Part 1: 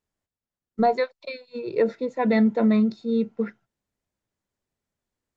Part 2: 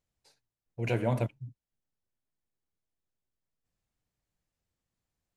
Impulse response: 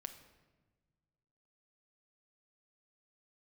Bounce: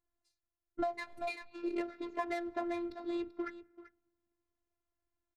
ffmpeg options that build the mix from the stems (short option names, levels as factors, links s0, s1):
-filter_complex "[0:a]adynamicsmooth=sensitivity=5:basefreq=1700,volume=1.26,asplit=4[s0][s1][s2][s3];[s1]volume=0.237[s4];[s2]volume=0.15[s5];[1:a]equalizer=f=960:w=0.67:g=-9.5,volume=0.316[s6];[s3]apad=whole_len=236376[s7];[s6][s7]sidechaincompress=threshold=0.0794:ratio=8:attack=16:release=703[s8];[2:a]atrim=start_sample=2205[s9];[s4][s9]afir=irnorm=-1:irlink=0[s10];[s5]aecho=0:1:387:1[s11];[s0][s8][s10][s11]amix=inputs=4:normalize=0,equalizer=f=125:t=o:w=0.33:g=9,equalizer=f=250:t=o:w=0.33:g=-10,equalizer=f=500:t=o:w=0.33:g=-11,afftfilt=real='hypot(re,im)*cos(PI*b)':imag='0':win_size=512:overlap=0.75,acompressor=threshold=0.0251:ratio=16"